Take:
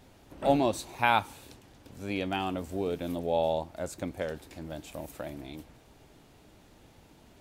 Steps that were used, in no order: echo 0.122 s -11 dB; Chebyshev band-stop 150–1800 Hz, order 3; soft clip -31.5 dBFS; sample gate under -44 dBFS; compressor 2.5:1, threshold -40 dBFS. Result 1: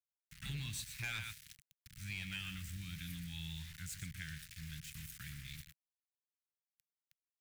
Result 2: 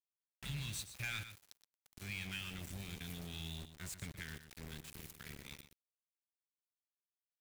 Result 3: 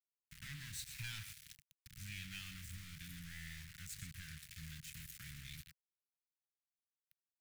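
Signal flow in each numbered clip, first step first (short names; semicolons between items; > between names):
echo > sample gate > Chebyshev band-stop > soft clip > compressor; Chebyshev band-stop > soft clip > sample gate > compressor > echo; soft clip > echo > compressor > sample gate > Chebyshev band-stop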